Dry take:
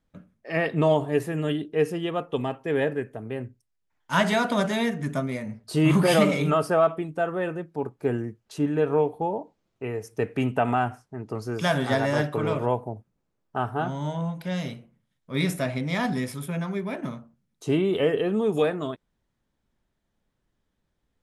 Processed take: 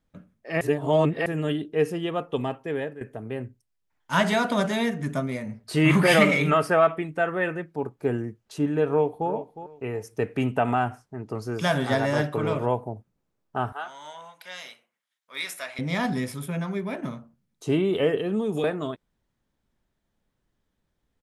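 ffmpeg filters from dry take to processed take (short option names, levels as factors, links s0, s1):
-filter_complex "[0:a]asettb=1/sr,asplit=3[s0][s1][s2];[s0]atrim=end=5.664[s3];[s1]atrim=start=5.66:end=7.72,asetpts=PTS-STARTPTS,afade=t=in:d=0.004:c=qsin,afade=t=out:st=2.056:d=0.004:c=qsin,equalizer=f=2000:t=o:w=0.88:g=10[s4];[s2]atrim=start=7.716[s5];[s3][s4]acrossfade=d=0.004:c1=hsin:c2=qsin[s6];[s6][s5]acrossfade=d=0.004:c1=qsin:c2=hsin,asplit=2[s7][s8];[s8]afade=t=in:st=8.89:d=0.01,afade=t=out:st=9.3:d=0.01,aecho=0:1:360|720:0.237137|0.0474275[s9];[s7][s9]amix=inputs=2:normalize=0,asettb=1/sr,asplit=3[s10][s11][s12];[s10]atrim=end=13.724[s13];[s11]atrim=start=13.72:end=15.79,asetpts=PTS-STARTPTS,afade=t=in:d=0.004:c=qsin,afade=t=out:st=2.066:d=0.004:c=qsin,highpass=1100[s14];[s12]atrim=start=15.786[s15];[s13][s14]acrossfade=d=0.004:c1=hsin:c2=qsin[s16];[s16][s15]acrossfade=d=0.004:c1=qsin:c2=hsin,asettb=1/sr,asplit=3[s17][s18][s19];[s17]atrim=end=18.174[s20];[s18]atrim=start=18.17:end=18.64,asetpts=PTS-STARTPTS,afade=t=in:d=0.004:c=qsin,afade=t=out:st=0.466:d=0.004:c=qsin,acrossover=split=310|3000[s21][s22][s23];[s22]acompressor=threshold=0.0355:ratio=6:attack=3.2:release=140:knee=2.83:detection=peak[s24];[s21][s24][s23]amix=inputs=3:normalize=0[s25];[s19]atrim=start=18.636[s26];[s20][s25]acrossfade=d=0.004:c1=hsin:c2=qsin[s27];[s27][s26]acrossfade=d=0.004:c1=qsin:c2=hsin,asplit=4[s28][s29][s30][s31];[s28]atrim=end=0.612[s32];[s29]atrim=start=0.608:end=1.262,asetpts=PTS-STARTPTS,areverse[s33];[s30]atrim=start=1.258:end=3.01,asetpts=PTS-STARTPTS,afade=t=out:st=1.262:d=0.49:silence=0.188365[s34];[s31]atrim=start=3.01,asetpts=PTS-STARTPTS,afade=t=in:d=0.004:c=hsin:silence=0.188365[s35];[s32][s33]acrossfade=d=0.004:c1=hsin:c2=hsin[s36];[s34][s35]concat=n=2:v=0:a=1[s37];[s36][s37]acrossfade=d=0.004:c1=hsin:c2=hsin"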